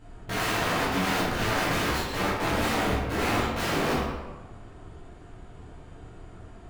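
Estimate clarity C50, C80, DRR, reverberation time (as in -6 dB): -1.0 dB, 2.5 dB, -10.0 dB, 1.2 s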